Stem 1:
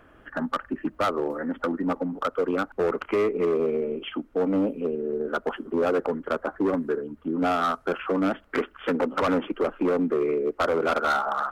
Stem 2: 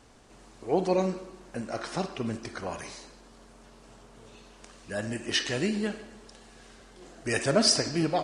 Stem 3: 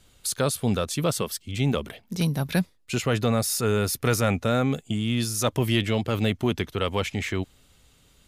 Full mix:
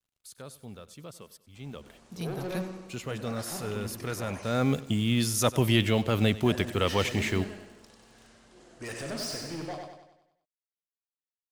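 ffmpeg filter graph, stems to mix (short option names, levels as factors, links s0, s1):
-filter_complex "[1:a]asoftclip=type=tanh:threshold=0.0447,adelay=1550,volume=0.473,asplit=2[s0][s1];[s1]volume=0.631[s2];[2:a]acrusher=bits=7:mix=0:aa=0.5,volume=0.944,afade=t=in:st=1.56:d=0.67:silence=0.354813,afade=t=in:st=4.42:d=0.28:silence=0.281838,asplit=2[s3][s4];[s4]volume=0.126[s5];[s2][s5]amix=inputs=2:normalize=0,aecho=0:1:96|192|288|384|480|576|672:1|0.48|0.23|0.111|0.0531|0.0255|0.0122[s6];[s0][s3][s6]amix=inputs=3:normalize=0"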